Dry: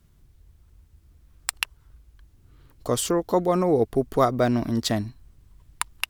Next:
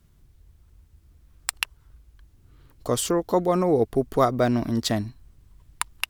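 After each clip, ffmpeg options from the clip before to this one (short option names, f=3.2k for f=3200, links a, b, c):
-af anull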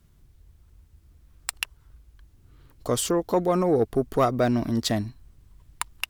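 -af "asoftclip=type=tanh:threshold=-10.5dB"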